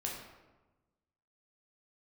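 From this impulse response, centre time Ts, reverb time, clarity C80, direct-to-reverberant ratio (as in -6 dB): 52 ms, 1.2 s, 5.5 dB, -2.5 dB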